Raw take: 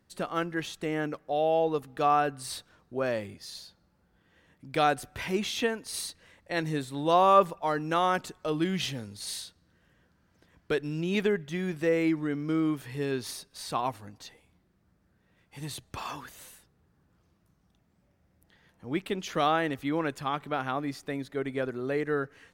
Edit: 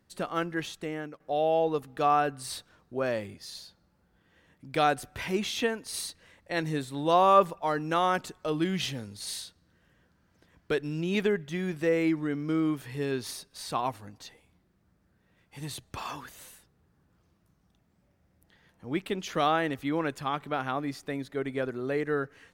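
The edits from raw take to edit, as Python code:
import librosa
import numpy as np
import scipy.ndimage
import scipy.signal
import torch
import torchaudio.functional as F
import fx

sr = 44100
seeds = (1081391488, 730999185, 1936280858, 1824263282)

y = fx.edit(x, sr, fx.fade_out_to(start_s=0.65, length_s=0.55, floor_db=-13.0), tone=tone)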